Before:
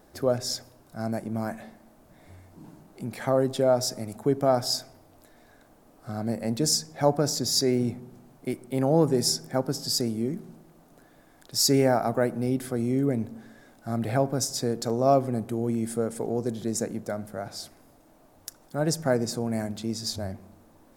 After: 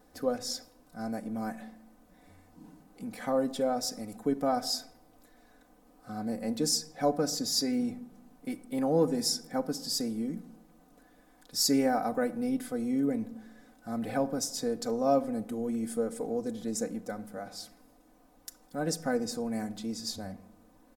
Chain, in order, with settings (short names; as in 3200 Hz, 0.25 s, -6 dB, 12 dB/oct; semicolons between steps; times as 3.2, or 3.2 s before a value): comb 4 ms, depth 81%; reverb RT60 0.75 s, pre-delay 7 ms, DRR 14.5 dB; gain -7 dB